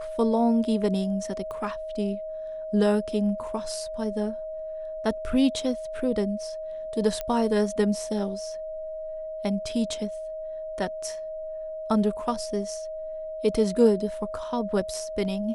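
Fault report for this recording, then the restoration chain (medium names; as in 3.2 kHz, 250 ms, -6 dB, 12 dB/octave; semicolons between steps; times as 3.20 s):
whine 630 Hz -32 dBFS
1.51 s: pop -26 dBFS
7.21 s: pop -16 dBFS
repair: de-click; band-stop 630 Hz, Q 30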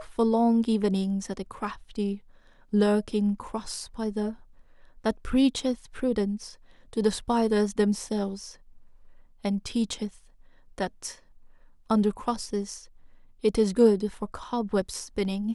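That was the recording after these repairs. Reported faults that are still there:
nothing left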